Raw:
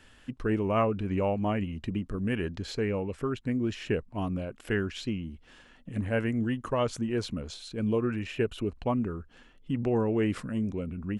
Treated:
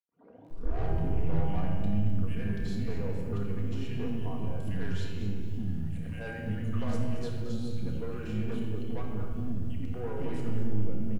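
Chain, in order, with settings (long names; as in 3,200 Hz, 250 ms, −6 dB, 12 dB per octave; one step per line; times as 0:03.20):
turntable start at the beginning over 1.14 s
three-band delay without the direct sound highs, mids, lows 90/500 ms, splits 320/2,200 Hz
soft clipping −28.5 dBFS, distortion −11 dB
reversed playback
upward compression, threshold −36 dBFS
reversed playback
low-shelf EQ 180 Hz +12 dB
tuned comb filter 160 Hz, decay 1.3 s, mix 80%
on a send: ambience of single reflections 30 ms −11.5 dB, 80 ms −14.5 dB
on the sum: rectangular room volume 2,200 cubic metres, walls mixed, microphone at 1.8 metres
feedback echo at a low word length 225 ms, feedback 35%, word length 10 bits, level −11.5 dB
level +4 dB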